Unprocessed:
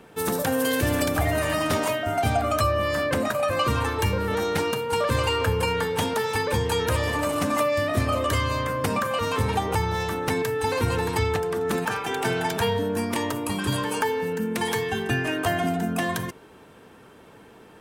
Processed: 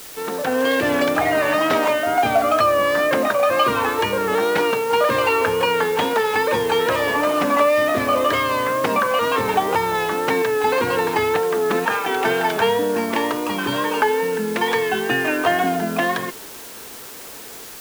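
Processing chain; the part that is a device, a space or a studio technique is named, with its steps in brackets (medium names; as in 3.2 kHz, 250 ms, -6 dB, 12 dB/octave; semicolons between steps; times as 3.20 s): dictaphone (band-pass 290–3300 Hz; level rider gain up to 7.5 dB; wow and flutter; white noise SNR 18 dB)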